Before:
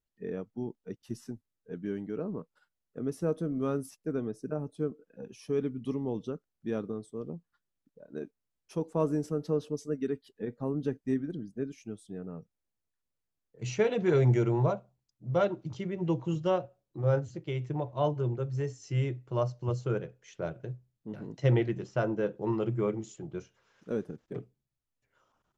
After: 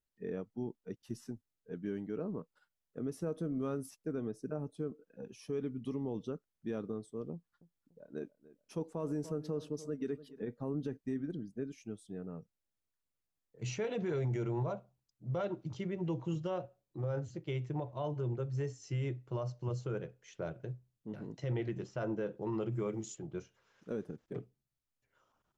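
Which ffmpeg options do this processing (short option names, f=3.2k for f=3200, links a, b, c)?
-filter_complex "[0:a]asettb=1/sr,asplit=3[a][b][c];[a]atrim=end=7.324[d];[b]atrim=start=7.32:end=10.45,asetpts=PTS-STARTPTS,afade=t=in:d=0.004:c=qsin,afade=t=out:st=3.126:d=0.004:c=qsin,asplit=2[e][f];[f]adelay=291,lowpass=f=2k:p=1,volume=-19dB,asplit=2[g][h];[h]adelay=291,lowpass=f=2k:p=1,volume=0.44,asplit=2[i][j];[j]adelay=291,lowpass=f=2k:p=1,volume=0.44[k];[e][g][i][k]amix=inputs=4:normalize=0,atrim=end_sample=138033[l];[c]atrim=start=10.446[m];[d][l]acrossfade=d=0.004:c1=hsin:c2=qsin[n];[n][m]acrossfade=d=0.004:c1=qsin:c2=hsin,asettb=1/sr,asplit=3[o][p][q];[o]atrim=end=22.724[r];[p]atrim=start=22.72:end=23.15,asetpts=PTS-STARTPTS,afade=t=in:d=0.004:c=qsin,afade=t=out:st=0.426:d=0.004:c=qsin,highshelf=f=5.4k:g=11.5[s];[q]atrim=start=23.146[t];[r][s]acrossfade=d=0.004:c1=hsin:c2=qsin[u];[u][t]acrossfade=d=0.004:c1=qsin:c2=hsin,alimiter=level_in=1dB:limit=-24dB:level=0:latency=1:release=60,volume=-1dB,volume=-3dB"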